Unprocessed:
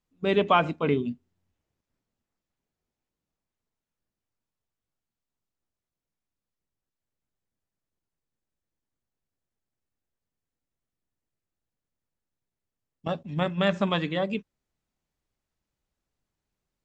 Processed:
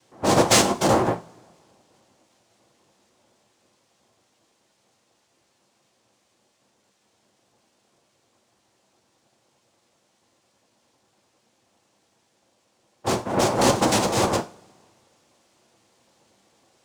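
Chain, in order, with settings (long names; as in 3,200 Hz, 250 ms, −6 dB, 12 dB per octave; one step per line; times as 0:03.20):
cochlear-implant simulation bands 2
power curve on the samples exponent 0.7
coupled-rooms reverb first 0.28 s, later 2 s, from −27 dB, DRR 6 dB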